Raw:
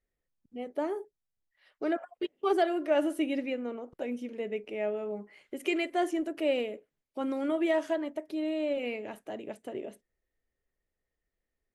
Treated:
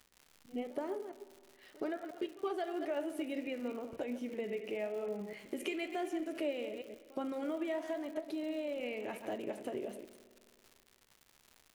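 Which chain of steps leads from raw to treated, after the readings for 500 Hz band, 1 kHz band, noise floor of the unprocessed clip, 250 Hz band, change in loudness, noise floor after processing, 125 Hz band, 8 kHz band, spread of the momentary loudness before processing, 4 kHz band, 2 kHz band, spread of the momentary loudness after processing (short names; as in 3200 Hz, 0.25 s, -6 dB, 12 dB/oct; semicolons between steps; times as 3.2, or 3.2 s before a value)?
-7.0 dB, -8.0 dB, under -85 dBFS, -7.0 dB, -7.0 dB, -68 dBFS, n/a, -3.0 dB, 14 LU, -6.5 dB, -7.0 dB, 8 LU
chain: reverse delay 0.124 s, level -12 dB; compressor 6:1, threshold -40 dBFS, peak gain reduction 17.5 dB; flange 0.97 Hz, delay 8.6 ms, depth 8.8 ms, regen +75%; crackle 180/s -55 dBFS; on a send: reverse echo 72 ms -21.5 dB; on the sum: spring tank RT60 2.3 s, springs 53 ms, chirp 35 ms, DRR 15 dB; gain +8.5 dB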